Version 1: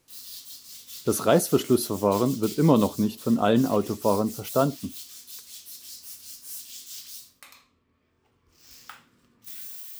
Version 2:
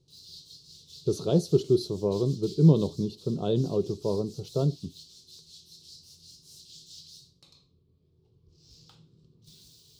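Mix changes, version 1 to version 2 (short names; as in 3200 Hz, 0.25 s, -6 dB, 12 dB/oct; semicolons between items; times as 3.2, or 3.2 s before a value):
background: add bell 130 Hz +7.5 dB 2.4 oct; master: add EQ curve 110 Hz 0 dB, 160 Hz +6 dB, 240 Hz -13 dB, 390 Hz +2 dB, 580 Hz -11 dB, 1000 Hz -16 dB, 1900 Hz -29 dB, 4100 Hz 0 dB, 16000 Hz -30 dB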